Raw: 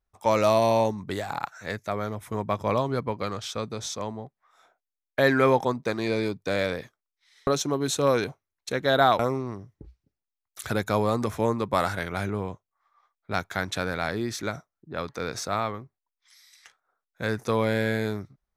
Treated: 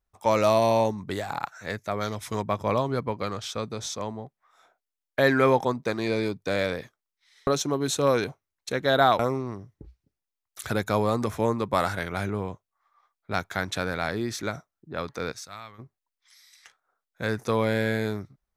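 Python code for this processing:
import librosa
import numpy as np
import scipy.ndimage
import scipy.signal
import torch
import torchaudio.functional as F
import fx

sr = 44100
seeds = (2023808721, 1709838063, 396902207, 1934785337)

y = fx.peak_eq(x, sr, hz=4900.0, db=14.0, octaves=1.9, at=(2.0, 2.41), fade=0.02)
y = fx.tone_stack(y, sr, knobs='5-5-5', at=(15.31, 15.78), fade=0.02)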